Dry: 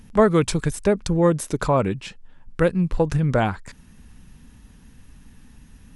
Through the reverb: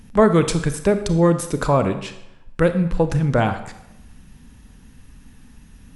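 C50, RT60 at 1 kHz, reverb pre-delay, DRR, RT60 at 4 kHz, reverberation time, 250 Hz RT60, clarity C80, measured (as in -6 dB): 10.5 dB, 0.85 s, 29 ms, 9.0 dB, 0.70 s, 0.85 s, 0.85 s, 13.0 dB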